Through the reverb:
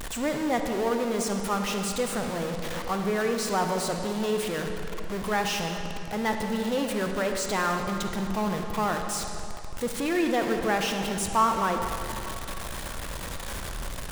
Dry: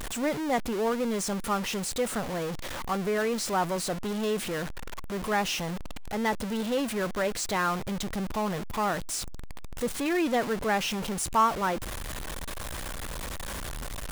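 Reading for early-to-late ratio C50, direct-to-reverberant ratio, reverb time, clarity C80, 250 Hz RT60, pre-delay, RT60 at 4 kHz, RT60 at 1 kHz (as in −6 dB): 4.5 dB, 4.0 dB, 2.8 s, 5.5 dB, 2.6 s, 37 ms, 2.2 s, 2.9 s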